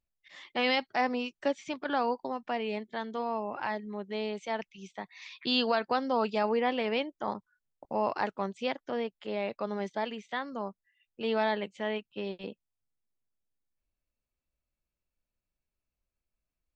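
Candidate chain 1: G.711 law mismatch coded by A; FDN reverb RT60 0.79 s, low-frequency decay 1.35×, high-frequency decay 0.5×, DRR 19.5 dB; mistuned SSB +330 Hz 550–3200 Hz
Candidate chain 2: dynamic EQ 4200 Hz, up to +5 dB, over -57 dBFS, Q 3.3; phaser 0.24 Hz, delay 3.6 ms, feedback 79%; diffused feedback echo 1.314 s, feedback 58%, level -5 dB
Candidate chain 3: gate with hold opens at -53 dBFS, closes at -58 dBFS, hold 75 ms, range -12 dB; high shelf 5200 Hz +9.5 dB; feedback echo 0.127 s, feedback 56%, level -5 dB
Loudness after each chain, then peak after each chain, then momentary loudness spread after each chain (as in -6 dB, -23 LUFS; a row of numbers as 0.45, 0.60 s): -35.5, -28.0, -30.5 LUFS; -18.5, -9.5, -11.5 dBFS; 14, 14, 13 LU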